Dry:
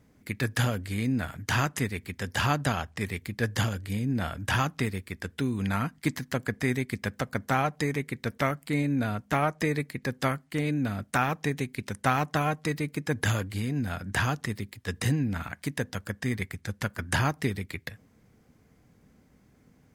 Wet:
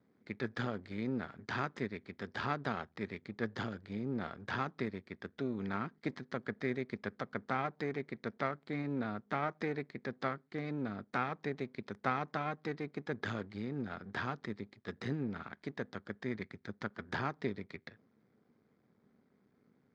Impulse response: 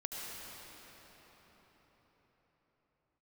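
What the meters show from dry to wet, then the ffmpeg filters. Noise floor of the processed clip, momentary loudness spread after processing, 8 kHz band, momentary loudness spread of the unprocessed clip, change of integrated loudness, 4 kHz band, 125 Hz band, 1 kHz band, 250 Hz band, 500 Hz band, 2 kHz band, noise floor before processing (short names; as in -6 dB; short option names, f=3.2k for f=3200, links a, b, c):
-73 dBFS, 7 LU, under -25 dB, 7 LU, -10.0 dB, -13.5 dB, -14.5 dB, -8.5 dB, -9.0 dB, -6.5 dB, -10.0 dB, -62 dBFS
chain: -af "aeval=exprs='if(lt(val(0),0),0.251*val(0),val(0))':c=same,highpass=140,equalizer=f=220:t=q:w=4:g=5,equalizer=f=400:t=q:w=4:g=6,equalizer=f=1.3k:t=q:w=4:g=3,equalizer=f=2.8k:t=q:w=4:g=-9,lowpass=f=4.4k:w=0.5412,lowpass=f=4.4k:w=1.3066,volume=-7.5dB"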